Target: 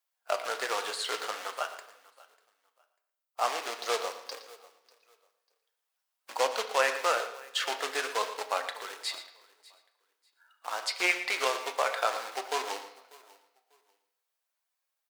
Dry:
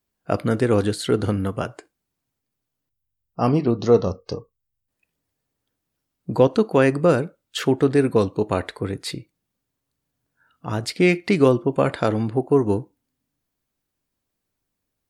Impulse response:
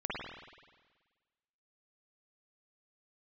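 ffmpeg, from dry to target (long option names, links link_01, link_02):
-filter_complex "[0:a]acrusher=bits=3:mode=log:mix=0:aa=0.000001,highpass=frequency=690:width=0.5412,highpass=frequency=690:width=1.3066,aecho=1:1:594|1188:0.075|0.0165,flanger=delay=3.6:depth=6.2:regen=63:speed=0.47:shape=sinusoidal,acrossover=split=8800[link_01][link_02];[link_02]acompressor=threshold=-51dB:ratio=4:attack=1:release=60[link_03];[link_01][link_03]amix=inputs=2:normalize=0,aecho=1:1:116:0.211,asplit=2[link_04][link_05];[1:a]atrim=start_sample=2205,asetrate=70560,aresample=44100,lowshelf=frequency=190:gain=7[link_06];[link_05][link_06]afir=irnorm=-1:irlink=0,volume=-8.5dB[link_07];[link_04][link_07]amix=inputs=2:normalize=0"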